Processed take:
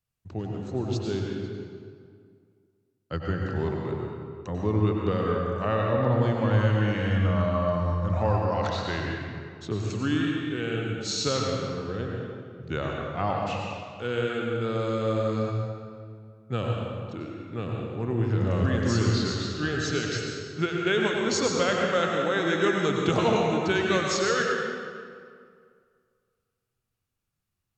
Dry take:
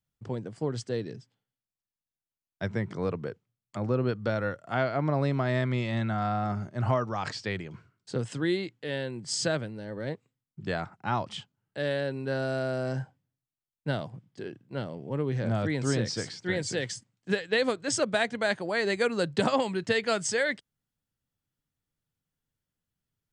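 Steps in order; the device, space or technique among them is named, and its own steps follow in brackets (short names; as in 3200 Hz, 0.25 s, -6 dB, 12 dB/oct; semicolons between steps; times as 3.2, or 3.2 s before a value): slowed and reverbed (varispeed -16%; reverb RT60 2.1 s, pre-delay 89 ms, DRR -1 dB)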